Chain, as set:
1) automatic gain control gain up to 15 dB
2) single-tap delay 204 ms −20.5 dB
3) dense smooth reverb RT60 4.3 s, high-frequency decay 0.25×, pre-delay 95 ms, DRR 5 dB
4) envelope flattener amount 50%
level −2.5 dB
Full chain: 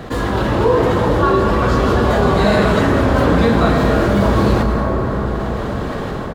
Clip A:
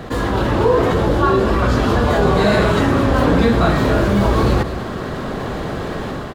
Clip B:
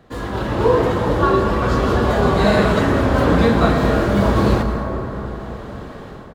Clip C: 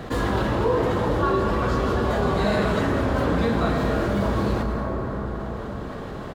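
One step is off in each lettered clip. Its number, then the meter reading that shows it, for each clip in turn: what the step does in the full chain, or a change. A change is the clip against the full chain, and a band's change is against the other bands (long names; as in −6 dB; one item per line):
3, change in momentary loudness spread +2 LU
4, change in crest factor +2.0 dB
1, change in momentary loudness spread +1 LU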